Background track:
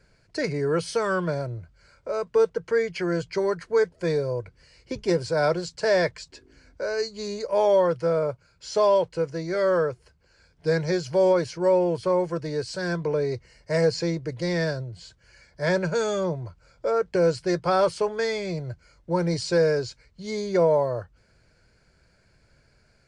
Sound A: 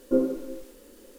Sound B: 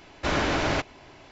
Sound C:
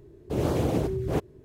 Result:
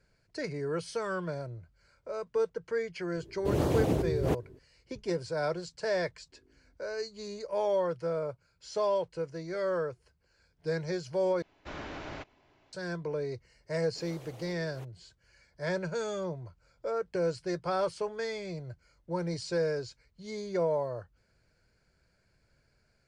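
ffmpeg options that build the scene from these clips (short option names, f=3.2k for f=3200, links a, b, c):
-filter_complex "[3:a]asplit=2[a][b];[0:a]volume=-9dB[c];[2:a]highshelf=f=6.8k:g=-10.5[d];[b]highpass=f=1.2k:p=1[e];[c]asplit=2[f][g];[f]atrim=end=11.424[h];[d]atrim=end=1.31,asetpts=PTS-STARTPTS,volume=-16dB[i];[g]atrim=start=12.726[j];[a]atrim=end=1.44,asetpts=PTS-STARTPTS,volume=-2dB,afade=t=in:d=0.004:c=hsin,afade=t=out:st=1.436:d=0.004:c=hsin,adelay=3150[k];[e]atrim=end=1.44,asetpts=PTS-STARTPTS,volume=-15dB,afade=t=in:d=0.004:c=hsin,afade=t=out:st=1.436:d=0.004:c=hsin,adelay=13650[l];[h][i]acrossfade=d=0.004:c1=hsin:c2=hsin[m];[m][j]acrossfade=d=0.004:c1=hsin:c2=hsin[n];[n][k][l]amix=inputs=3:normalize=0"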